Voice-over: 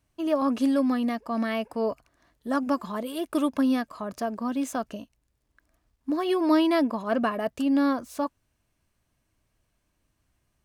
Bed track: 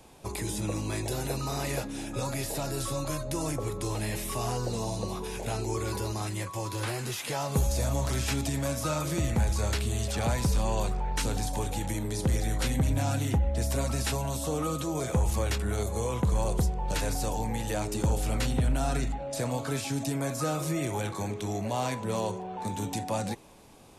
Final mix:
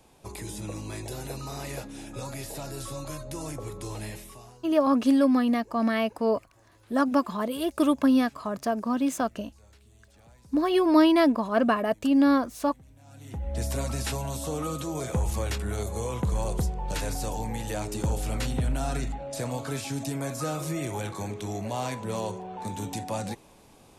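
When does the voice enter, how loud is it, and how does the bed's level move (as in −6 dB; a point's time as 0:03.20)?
4.45 s, +2.5 dB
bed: 0:04.07 −4.5 dB
0:04.75 −28 dB
0:12.98 −28 dB
0:13.56 −1 dB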